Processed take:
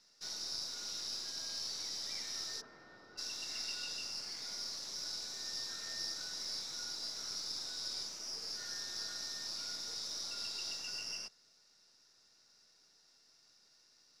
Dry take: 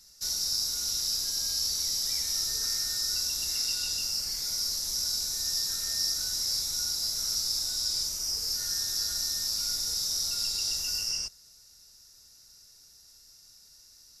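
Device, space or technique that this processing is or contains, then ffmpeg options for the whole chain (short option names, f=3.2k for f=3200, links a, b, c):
crystal radio: -filter_complex "[0:a]asplit=3[a][b][c];[a]afade=t=out:st=2.6:d=0.02[d];[b]lowpass=1.1k,afade=t=in:st=2.6:d=0.02,afade=t=out:st=3.17:d=0.02[e];[c]afade=t=in:st=3.17:d=0.02[f];[d][e][f]amix=inputs=3:normalize=0,highpass=240,lowpass=3.3k,aeval=exprs='if(lt(val(0),0),0.708*val(0),val(0))':c=same,volume=-1dB"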